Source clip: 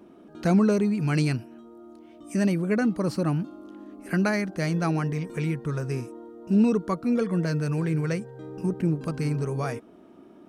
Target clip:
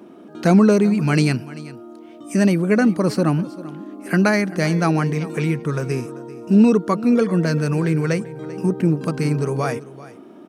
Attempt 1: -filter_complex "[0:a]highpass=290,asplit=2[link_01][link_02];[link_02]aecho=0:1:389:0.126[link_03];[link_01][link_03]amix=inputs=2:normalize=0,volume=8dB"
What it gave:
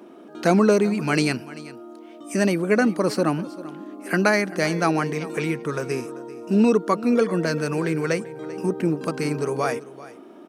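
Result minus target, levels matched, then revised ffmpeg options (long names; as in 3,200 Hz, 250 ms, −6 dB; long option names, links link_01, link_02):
125 Hz band −4.5 dB
-filter_complex "[0:a]highpass=140,asplit=2[link_01][link_02];[link_02]aecho=0:1:389:0.126[link_03];[link_01][link_03]amix=inputs=2:normalize=0,volume=8dB"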